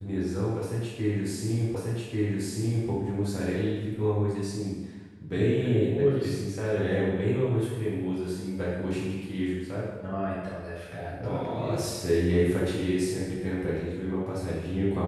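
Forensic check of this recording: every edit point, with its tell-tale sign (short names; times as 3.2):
1.75 repeat of the last 1.14 s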